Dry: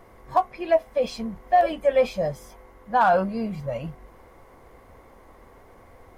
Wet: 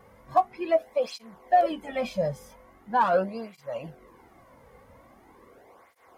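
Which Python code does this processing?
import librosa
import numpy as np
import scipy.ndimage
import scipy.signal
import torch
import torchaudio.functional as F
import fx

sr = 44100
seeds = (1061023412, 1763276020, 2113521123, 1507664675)

y = fx.flanger_cancel(x, sr, hz=0.42, depth_ms=3.1)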